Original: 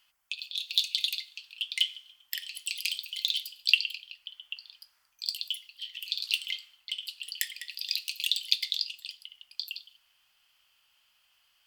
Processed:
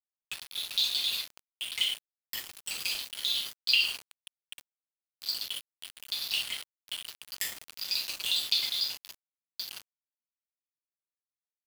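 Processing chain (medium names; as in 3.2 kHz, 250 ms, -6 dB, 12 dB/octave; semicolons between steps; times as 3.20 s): gated-style reverb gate 180 ms falling, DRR -5.5 dB; small samples zeroed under -27.5 dBFS; trim -6 dB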